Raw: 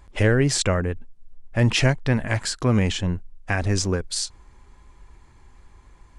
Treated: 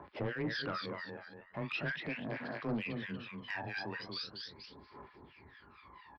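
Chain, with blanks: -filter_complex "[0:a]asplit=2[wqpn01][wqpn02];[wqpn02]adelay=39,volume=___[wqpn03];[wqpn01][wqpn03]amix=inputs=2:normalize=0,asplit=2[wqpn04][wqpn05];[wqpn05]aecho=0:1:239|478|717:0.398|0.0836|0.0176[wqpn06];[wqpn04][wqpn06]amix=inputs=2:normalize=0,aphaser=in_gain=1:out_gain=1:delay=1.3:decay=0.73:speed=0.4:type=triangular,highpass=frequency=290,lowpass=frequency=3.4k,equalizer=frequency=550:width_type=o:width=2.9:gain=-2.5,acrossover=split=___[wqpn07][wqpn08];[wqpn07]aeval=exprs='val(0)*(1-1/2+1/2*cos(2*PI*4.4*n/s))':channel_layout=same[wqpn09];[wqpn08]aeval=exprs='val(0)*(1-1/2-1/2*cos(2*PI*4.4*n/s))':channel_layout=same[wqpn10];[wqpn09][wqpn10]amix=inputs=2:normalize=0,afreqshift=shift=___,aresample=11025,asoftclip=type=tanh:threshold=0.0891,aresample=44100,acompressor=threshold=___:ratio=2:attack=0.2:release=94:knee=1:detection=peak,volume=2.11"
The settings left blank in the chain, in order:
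0.335, 1300, 15, 0.00251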